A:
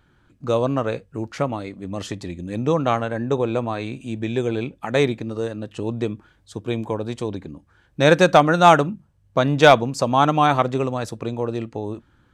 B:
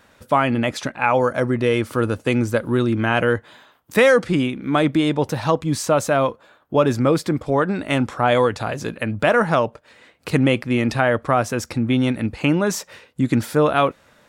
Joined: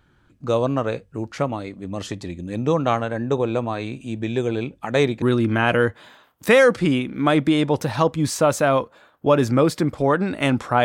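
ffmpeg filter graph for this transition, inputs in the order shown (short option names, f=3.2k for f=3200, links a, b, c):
-filter_complex "[0:a]apad=whole_dur=10.84,atrim=end=10.84,atrim=end=5.222[a];[1:a]atrim=start=2.698:end=8.32[b];[a][b]acrossfade=d=0.004:c1=hsin:c2=hsin"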